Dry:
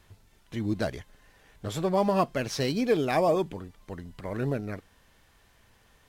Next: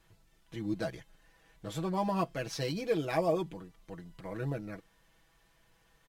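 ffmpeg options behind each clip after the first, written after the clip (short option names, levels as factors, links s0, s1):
-af "aecho=1:1:6.1:0.75,volume=0.398"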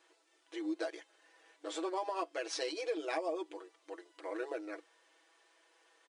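-af "afftfilt=real='re*between(b*sr/4096,300,10000)':imag='im*between(b*sr/4096,300,10000)':win_size=4096:overlap=0.75,acompressor=threshold=0.02:ratio=10,volume=1.19"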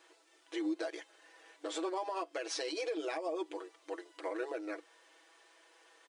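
-af "alimiter=level_in=2.82:limit=0.0631:level=0:latency=1:release=184,volume=0.355,volume=1.78"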